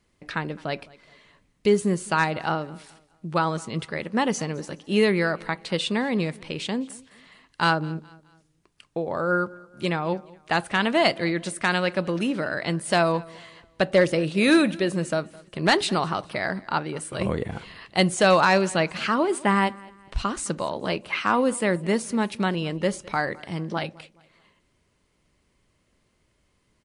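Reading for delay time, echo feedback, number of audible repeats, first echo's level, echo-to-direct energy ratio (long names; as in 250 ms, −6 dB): 211 ms, 38%, 2, −23.0 dB, −22.5 dB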